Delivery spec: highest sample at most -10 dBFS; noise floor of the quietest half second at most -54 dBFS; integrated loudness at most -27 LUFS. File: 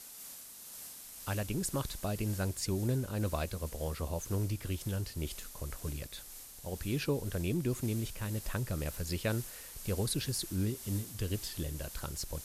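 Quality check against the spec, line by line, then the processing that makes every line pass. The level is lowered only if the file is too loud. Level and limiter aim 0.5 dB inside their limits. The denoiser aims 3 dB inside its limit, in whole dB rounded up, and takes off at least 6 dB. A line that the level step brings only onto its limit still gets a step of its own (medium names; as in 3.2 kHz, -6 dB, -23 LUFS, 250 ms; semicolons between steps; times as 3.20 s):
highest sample -20.0 dBFS: pass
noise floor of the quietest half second -49 dBFS: fail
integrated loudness -36.5 LUFS: pass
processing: noise reduction 8 dB, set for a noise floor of -49 dBFS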